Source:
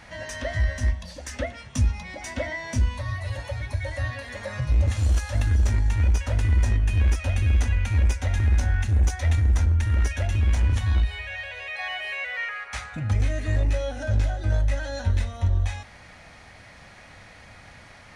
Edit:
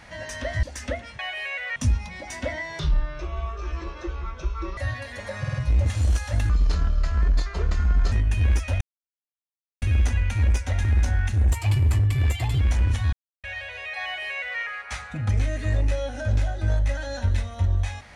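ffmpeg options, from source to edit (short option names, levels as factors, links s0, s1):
-filter_complex "[0:a]asplit=16[s0][s1][s2][s3][s4][s5][s6][s7][s8][s9][s10][s11][s12][s13][s14][s15];[s0]atrim=end=0.632[s16];[s1]atrim=start=1.138:end=1.702[s17];[s2]atrim=start=11.858:end=12.432[s18];[s3]atrim=start=1.698:end=2.734[s19];[s4]atrim=start=2.73:end=3.94,asetpts=PTS-STARTPTS,asetrate=26901,aresample=44100,atrim=end_sample=87477,asetpts=PTS-STARTPTS[s20];[s5]atrim=start=3.936:end=4.612[s21];[s6]atrim=start=4.558:end=4.612[s22];[s7]atrim=start=4.558:end=4.612[s23];[s8]atrim=start=4.558:end=5.514[s24];[s9]atrim=start=5.51:end=6.68,asetpts=PTS-STARTPTS,asetrate=31752,aresample=44100,atrim=end_sample=71662,asetpts=PTS-STARTPTS[s25];[s10]atrim=start=6.676:end=7.37,asetpts=PTS-STARTPTS,afade=t=out:st=0.69:d=0.004:c=hsin,apad=pad_dur=1.01[s26];[s11]atrim=start=7.37:end=9.074,asetpts=PTS-STARTPTS,afade=t=in:d=0.004:c=hsin[s27];[s12]atrim=start=9.07:end=10.43,asetpts=PTS-STARTPTS,asetrate=55125,aresample=44100[s28];[s13]atrim=start=10.426:end=10.95,asetpts=PTS-STARTPTS,afade=t=out:st=0.52:d=0.004:c=hsin[s29];[s14]atrim=start=10.95:end=11.26,asetpts=PTS-STARTPTS,volume=0[s30];[s15]atrim=start=11.26,asetpts=PTS-STARTPTS,afade=t=in:d=0.004:c=hsin[s31];[s16][s17]acrossfade=d=0.004:c1=hsin:c2=hsin[s32];[s32][s18]acrossfade=d=0.004:c1=hsin:c2=hsin[s33];[s33][s19]acrossfade=d=0.004:c1=hsin:c2=hsin[s34];[s34][s20]acrossfade=d=0.004:c1=hsin:c2=hsin[s35];[s35][s21]acrossfade=d=0.004:c1=hsin:c2=hsin[s36];[s36][s22]acrossfade=d=0.004:c1=hsin:c2=hsin[s37];[s37][s23]acrossfade=d=0.004:c1=hsin:c2=hsin[s38];[s38][s24]acrossfade=d=0.004:c1=hsin:c2=hsin[s39];[s39][s25]acrossfade=d=0.004:c1=hsin:c2=hsin[s40];[s26][s27]concat=n=2:v=0:a=1[s41];[s40][s41]acrossfade=d=0.004:c1=hsin:c2=hsin[s42];[s42][s28]acrossfade=d=0.004:c1=hsin:c2=hsin[s43];[s29][s30][s31]concat=n=3:v=0:a=1[s44];[s43][s44]acrossfade=d=0.004:c1=hsin:c2=hsin"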